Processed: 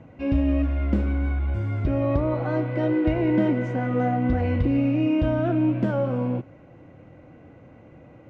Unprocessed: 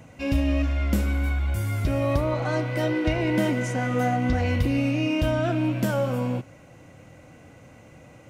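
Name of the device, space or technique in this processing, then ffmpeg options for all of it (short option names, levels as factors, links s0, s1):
phone in a pocket: -af "lowpass=3600,equalizer=f=340:t=o:w=0.8:g=4.5,highshelf=f=2200:g=-11.5"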